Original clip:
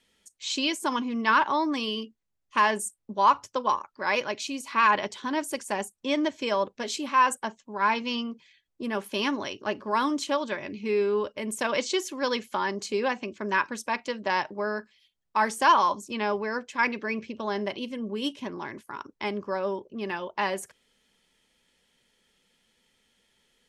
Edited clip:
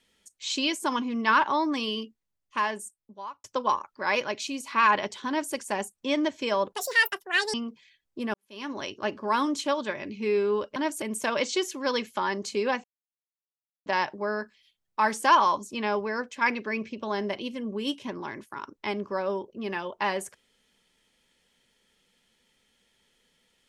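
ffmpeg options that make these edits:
ffmpeg -i in.wav -filter_complex "[0:a]asplit=9[link_01][link_02][link_03][link_04][link_05][link_06][link_07][link_08][link_09];[link_01]atrim=end=3.44,asetpts=PTS-STARTPTS,afade=type=out:start_time=1.98:duration=1.46[link_10];[link_02]atrim=start=3.44:end=6.724,asetpts=PTS-STARTPTS,afade=type=in:duration=0.004:curve=hsin[link_11];[link_03]atrim=start=6.72:end=8.17,asetpts=PTS-STARTPTS,asetrate=78057,aresample=44100,atrim=end_sample=36127,asetpts=PTS-STARTPTS[link_12];[link_04]atrim=start=8.166:end=8.97,asetpts=PTS-STARTPTS,afade=type=out:start_time=0.8:duration=0.004:curve=hsin[link_13];[link_05]atrim=start=8.97:end=11.392,asetpts=PTS-STARTPTS,afade=type=in:duration=0.51:curve=qua[link_14];[link_06]atrim=start=5.278:end=5.542[link_15];[link_07]atrim=start=11.388:end=13.21,asetpts=PTS-STARTPTS,afade=type=out:start_time=1.818:duration=0.004:curve=hsin[link_16];[link_08]atrim=start=13.21:end=14.23,asetpts=PTS-STARTPTS,volume=0[link_17];[link_09]atrim=start=14.23,asetpts=PTS-STARTPTS,afade=type=in:duration=0.004:curve=hsin[link_18];[link_10][link_11]concat=n=2:v=0:a=1[link_19];[link_19][link_12]acrossfade=duration=0.004:curve1=hsin:curve2=hsin[link_20];[link_13][link_14]concat=n=2:v=0:a=1[link_21];[link_20][link_21]acrossfade=duration=0.004:curve1=hsin:curve2=hsin[link_22];[link_22][link_15]acrossfade=duration=0.004:curve1=hsin:curve2=hsin[link_23];[link_16][link_17][link_18]concat=n=3:v=0:a=1[link_24];[link_23][link_24]acrossfade=duration=0.004:curve1=hsin:curve2=hsin" out.wav

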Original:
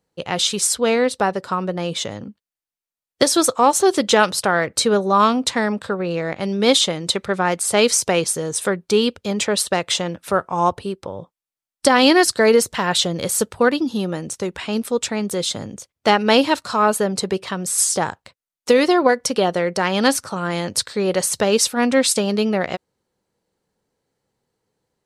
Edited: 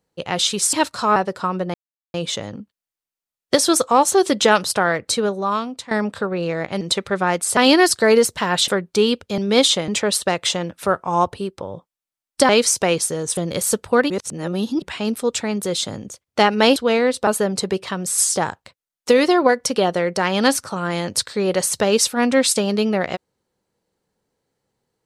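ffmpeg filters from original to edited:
ffmpeg -i in.wav -filter_complex "[0:a]asplit=16[link_01][link_02][link_03][link_04][link_05][link_06][link_07][link_08][link_09][link_10][link_11][link_12][link_13][link_14][link_15][link_16];[link_01]atrim=end=0.732[link_17];[link_02]atrim=start=16.438:end=16.872[link_18];[link_03]atrim=start=1.238:end=1.82,asetpts=PTS-STARTPTS,afade=type=out:start_time=0.578:duration=0.004:curve=hsin,apad=pad_dur=0.4[link_19];[link_04]atrim=start=1.82:end=5.59,asetpts=PTS-STARTPTS,afade=type=in:duration=0.004:curve=hsin,afade=type=out:start_time=2.68:duration=1.09:silence=0.158489[link_20];[link_05]atrim=start=5.59:end=6.492,asetpts=PTS-STARTPTS,afade=type=in:duration=0.004:curve=hsin:silence=0.158489[link_21];[link_06]atrim=start=6.988:end=7.752[link_22];[link_07]atrim=start=11.938:end=13.052[link_23];[link_08]atrim=start=8.628:end=9.332[link_24];[link_09]atrim=start=6.488:end=6.992[link_25];[link_10]atrim=start=9.328:end=11.942[link_26];[link_11]atrim=start=7.748:end=8.632[link_27];[link_12]atrim=start=13.048:end=13.782[link_28];[link_13]atrim=start=13.778:end=14.502,asetpts=PTS-STARTPTS,areverse[link_29];[link_14]atrim=start=14.498:end=16.442[link_30];[link_15]atrim=start=0.728:end=1.242[link_31];[link_16]atrim=start=16.868[link_32];[link_17][link_18]acrossfade=duration=0.004:curve1=hsin:curve2=hsin[link_33];[link_19][link_20][link_21]concat=n=3:v=0:a=1[link_34];[link_33][link_34]acrossfade=duration=0.004:curve1=hsin:curve2=hsin[link_35];[link_35][link_22]acrossfade=duration=0.004:curve1=hsin:curve2=hsin[link_36];[link_36][link_23]acrossfade=duration=0.004:curve1=hsin:curve2=hsin[link_37];[link_37][link_24]acrossfade=duration=0.004:curve1=hsin:curve2=hsin[link_38];[link_38][link_25]acrossfade=duration=0.004:curve1=hsin:curve2=hsin[link_39];[link_39][link_26]acrossfade=duration=0.004:curve1=hsin:curve2=hsin[link_40];[link_40][link_27]acrossfade=duration=0.004:curve1=hsin:curve2=hsin[link_41];[link_41][link_28]acrossfade=duration=0.004:curve1=hsin:curve2=hsin[link_42];[link_42][link_29]acrossfade=duration=0.004:curve1=hsin:curve2=hsin[link_43];[link_43][link_30]acrossfade=duration=0.004:curve1=hsin:curve2=hsin[link_44];[link_44][link_31]acrossfade=duration=0.004:curve1=hsin:curve2=hsin[link_45];[link_45][link_32]acrossfade=duration=0.004:curve1=hsin:curve2=hsin" out.wav

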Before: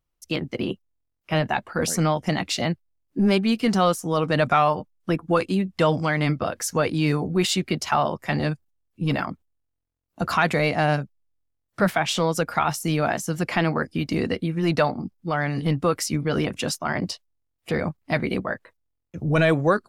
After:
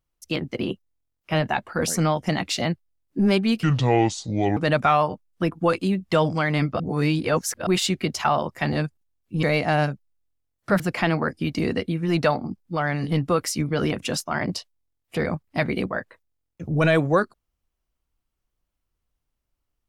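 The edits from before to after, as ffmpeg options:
ffmpeg -i in.wav -filter_complex "[0:a]asplit=7[link_01][link_02][link_03][link_04][link_05][link_06][link_07];[link_01]atrim=end=3.634[link_08];[link_02]atrim=start=3.63:end=4.24,asetpts=PTS-STARTPTS,asetrate=28665,aresample=44100,atrim=end_sample=41386,asetpts=PTS-STARTPTS[link_09];[link_03]atrim=start=4.236:end=6.472[link_10];[link_04]atrim=start=6.468:end=7.342,asetpts=PTS-STARTPTS,areverse[link_11];[link_05]atrim=start=7.338:end=9.102[link_12];[link_06]atrim=start=10.528:end=11.902[link_13];[link_07]atrim=start=13.338[link_14];[link_08][link_09]acrossfade=duration=0.004:curve1=hsin:curve2=hsin[link_15];[link_15][link_10]acrossfade=duration=0.004:curve1=hsin:curve2=hsin[link_16];[link_16][link_11]acrossfade=duration=0.004:curve1=hsin:curve2=hsin[link_17];[link_17][link_12]acrossfade=duration=0.004:curve1=hsin:curve2=hsin[link_18];[link_18][link_13]acrossfade=duration=0.004:curve1=hsin:curve2=hsin[link_19];[link_19][link_14]acrossfade=duration=0.004:curve1=hsin:curve2=hsin" out.wav

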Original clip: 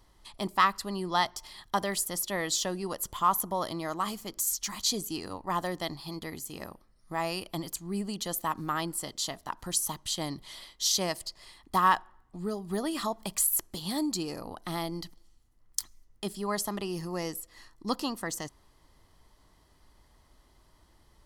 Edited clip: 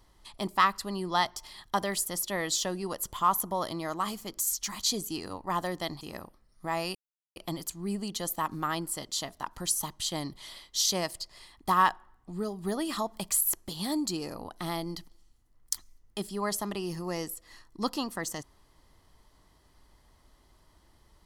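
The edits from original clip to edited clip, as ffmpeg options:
ffmpeg -i in.wav -filter_complex "[0:a]asplit=3[link_01][link_02][link_03];[link_01]atrim=end=6.012[link_04];[link_02]atrim=start=6.478:end=7.42,asetpts=PTS-STARTPTS,afade=type=out:start_time=0.938:duration=0.004:curve=hsin,apad=pad_dur=0.41[link_05];[link_03]atrim=start=7.42,asetpts=PTS-STARTPTS,afade=type=in:duration=0.004:curve=hsin[link_06];[link_05][link_06]concat=n=2:v=0:a=1[link_07];[link_04][link_07]acrossfade=duration=0.004:curve1=hsin:curve2=hsin" out.wav

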